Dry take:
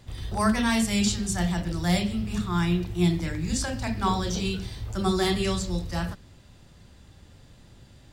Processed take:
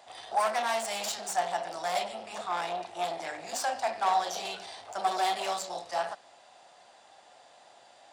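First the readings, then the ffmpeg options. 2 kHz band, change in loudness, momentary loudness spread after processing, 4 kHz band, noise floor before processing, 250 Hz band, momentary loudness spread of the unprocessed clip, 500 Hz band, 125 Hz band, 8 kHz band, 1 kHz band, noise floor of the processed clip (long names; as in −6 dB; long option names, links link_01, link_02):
−3.5 dB, −5.0 dB, 10 LU, −5.0 dB, −53 dBFS, −24.0 dB, 8 LU, −2.0 dB, below −30 dB, −4.5 dB, +3.5 dB, −58 dBFS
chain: -af "aresample=22050,aresample=44100,asoftclip=type=tanh:threshold=-27.5dB,highpass=frequency=720:width_type=q:width=5.3"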